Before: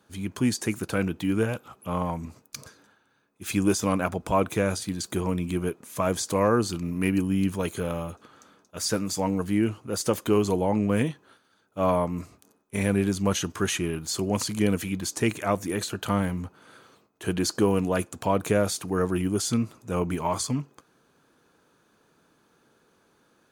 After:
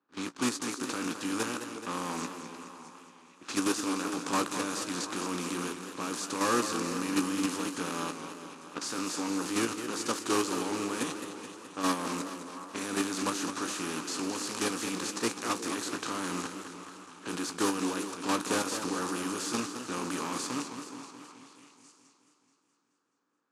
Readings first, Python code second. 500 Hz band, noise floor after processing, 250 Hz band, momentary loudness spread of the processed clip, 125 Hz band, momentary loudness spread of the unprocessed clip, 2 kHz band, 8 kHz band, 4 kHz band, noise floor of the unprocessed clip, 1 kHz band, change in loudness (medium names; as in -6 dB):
-9.0 dB, -70 dBFS, -6.5 dB, 13 LU, -16.5 dB, 9 LU, -1.5 dB, -1.5 dB, -1.0 dB, -66 dBFS, -2.5 dB, -6.0 dB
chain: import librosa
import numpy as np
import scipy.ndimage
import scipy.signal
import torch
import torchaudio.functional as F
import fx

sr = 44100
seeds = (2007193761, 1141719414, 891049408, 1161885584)

p1 = fx.spec_flatten(x, sr, power=0.4)
p2 = fx.env_lowpass(p1, sr, base_hz=1900.0, full_db=-24.5)
p3 = fx.leveller(p2, sr, passes=2)
p4 = fx.level_steps(p3, sr, step_db=16)
p5 = fx.tube_stage(p4, sr, drive_db=25.0, bias=0.6)
p6 = fx.cabinet(p5, sr, low_hz=220.0, low_slope=12, high_hz=9700.0, hz=(280.0, 650.0, 1200.0, 2100.0, 3200.0, 9200.0), db=(10, -8, 5, -7, -5, -3))
p7 = fx.doubler(p6, sr, ms=17.0, db=-10.5)
p8 = p7 + fx.echo_stepped(p7, sr, ms=362, hz=380.0, octaves=1.4, feedback_pct=70, wet_db=-11, dry=0)
y = fx.echo_warbled(p8, sr, ms=213, feedback_pct=63, rate_hz=2.8, cents=123, wet_db=-9)